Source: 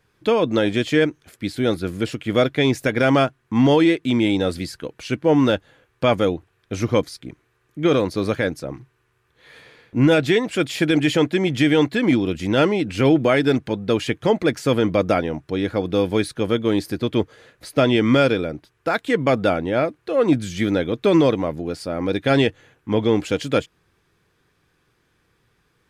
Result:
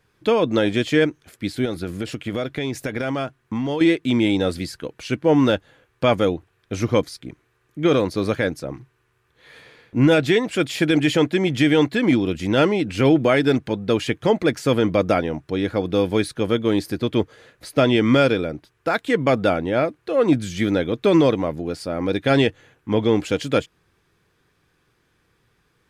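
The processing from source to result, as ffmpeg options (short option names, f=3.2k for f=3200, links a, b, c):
-filter_complex "[0:a]asettb=1/sr,asplit=3[a][b][c];[a]atrim=end=1.654[d];[b]atrim=start=1.65:end=3.81,asetpts=PTS-STARTPTS,afade=t=in:d=0.004:c=qsin,afade=t=out:st=2.156:d=0.004:c=qsin,acompressor=threshold=-21dB:ratio=6:attack=3.2:release=140:knee=1:detection=peak[e];[c]atrim=start=3.806[f];[d][e]acrossfade=d=0.004:c1=hsin:c2=qsin[g];[g][f]acrossfade=d=0.004:c1=qsin:c2=hsin"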